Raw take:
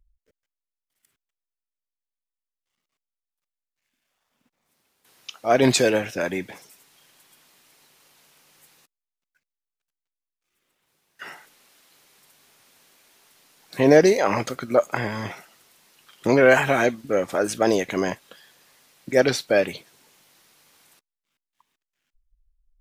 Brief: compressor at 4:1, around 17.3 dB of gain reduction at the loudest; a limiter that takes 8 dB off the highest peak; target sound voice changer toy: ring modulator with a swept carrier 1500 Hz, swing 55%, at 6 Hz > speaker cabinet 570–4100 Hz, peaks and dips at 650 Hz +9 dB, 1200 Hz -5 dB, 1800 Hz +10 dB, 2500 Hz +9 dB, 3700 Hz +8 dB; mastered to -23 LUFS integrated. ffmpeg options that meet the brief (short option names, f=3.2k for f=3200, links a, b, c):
-af "acompressor=threshold=-31dB:ratio=4,alimiter=level_in=0.5dB:limit=-24dB:level=0:latency=1,volume=-0.5dB,aeval=exprs='val(0)*sin(2*PI*1500*n/s+1500*0.55/6*sin(2*PI*6*n/s))':c=same,highpass=570,equalizer=f=650:t=q:w=4:g=9,equalizer=f=1.2k:t=q:w=4:g=-5,equalizer=f=1.8k:t=q:w=4:g=10,equalizer=f=2.5k:t=q:w=4:g=9,equalizer=f=3.7k:t=q:w=4:g=8,lowpass=f=4.1k:w=0.5412,lowpass=f=4.1k:w=1.3066,volume=8.5dB"